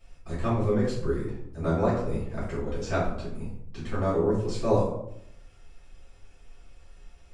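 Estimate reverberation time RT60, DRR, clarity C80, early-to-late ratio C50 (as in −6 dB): 0.75 s, −10.0 dB, 7.0 dB, 3.0 dB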